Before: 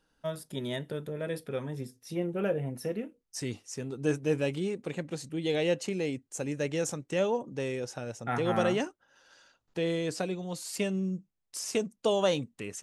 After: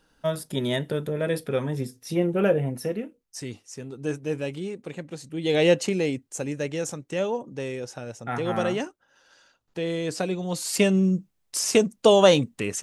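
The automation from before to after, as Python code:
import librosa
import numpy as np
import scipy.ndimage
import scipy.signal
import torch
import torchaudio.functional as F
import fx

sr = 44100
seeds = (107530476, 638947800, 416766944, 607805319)

y = fx.gain(x, sr, db=fx.line((2.51, 8.5), (3.49, -0.5), (5.25, -0.5), (5.65, 9.5), (6.76, 1.5), (9.86, 1.5), (10.77, 10.5)))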